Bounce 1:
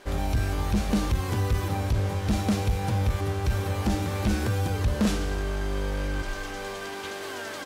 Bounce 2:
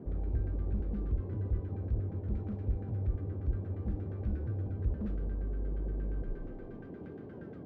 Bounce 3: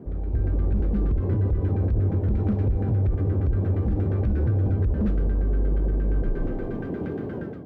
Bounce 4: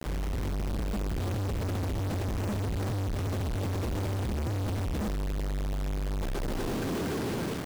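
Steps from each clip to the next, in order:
guitar amp tone stack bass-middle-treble 10-0-1; noise in a band 72–430 Hz −48 dBFS; auto-filter low-pass saw down 8.5 Hz 790–1,600 Hz; level +1.5 dB
automatic gain control gain up to 11 dB; brickwall limiter −20.5 dBFS, peak gain reduction 10 dB; level +4.5 dB
log-companded quantiser 2 bits; level −5 dB

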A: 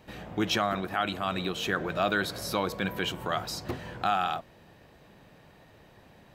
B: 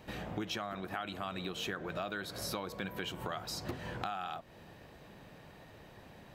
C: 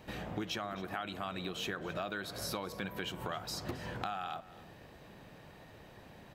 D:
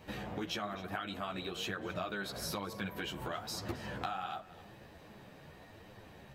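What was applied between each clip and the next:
downward compressor 6 to 1, threshold −37 dBFS, peak gain reduction 14.5 dB; level +1 dB
single-tap delay 268 ms −18 dB
multi-voice chorus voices 2, 1.1 Hz, delay 12 ms, depth 3 ms; level +3 dB

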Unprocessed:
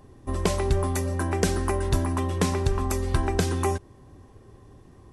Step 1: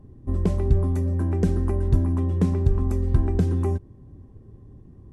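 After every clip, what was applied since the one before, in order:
drawn EQ curve 210 Hz 0 dB, 750 Hz −14 dB, 4,600 Hz −22 dB
level +5 dB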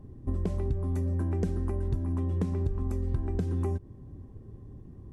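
downward compressor, threshold −26 dBFS, peak gain reduction 13 dB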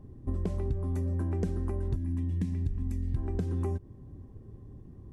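gain on a spectral selection 0:01.96–0:03.16, 330–1,600 Hz −13 dB
level −1.5 dB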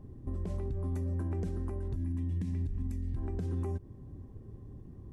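brickwall limiter −27.5 dBFS, peak gain reduction 9 dB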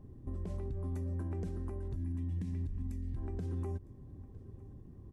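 single-tap delay 957 ms −22 dB
level −3.5 dB

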